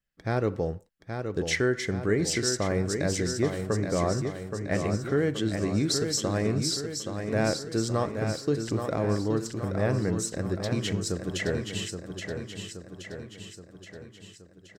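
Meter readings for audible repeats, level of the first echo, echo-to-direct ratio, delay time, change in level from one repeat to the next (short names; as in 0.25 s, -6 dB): 6, -6.5 dB, -5.0 dB, 0.824 s, -5.0 dB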